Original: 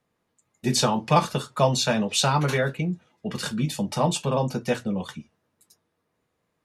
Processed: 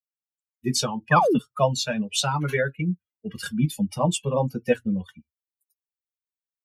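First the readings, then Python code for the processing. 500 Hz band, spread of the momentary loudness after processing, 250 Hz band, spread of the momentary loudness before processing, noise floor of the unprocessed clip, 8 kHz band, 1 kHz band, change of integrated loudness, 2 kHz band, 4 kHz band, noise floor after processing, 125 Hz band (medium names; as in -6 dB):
+0.5 dB, 10 LU, +0.5 dB, 10 LU, -76 dBFS, -1.5 dB, -0.5 dB, 0.0 dB, +2.0 dB, -2.5 dB, under -85 dBFS, -1.0 dB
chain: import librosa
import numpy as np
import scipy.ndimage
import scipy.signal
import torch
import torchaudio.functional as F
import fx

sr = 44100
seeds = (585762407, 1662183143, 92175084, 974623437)

y = fx.bin_expand(x, sr, power=2.0)
y = fx.rider(y, sr, range_db=5, speed_s=0.5)
y = fx.spec_paint(y, sr, seeds[0], shape='fall', start_s=1.11, length_s=0.28, low_hz=200.0, high_hz=1900.0, level_db=-23.0)
y = y * 10.0 ** (3.5 / 20.0)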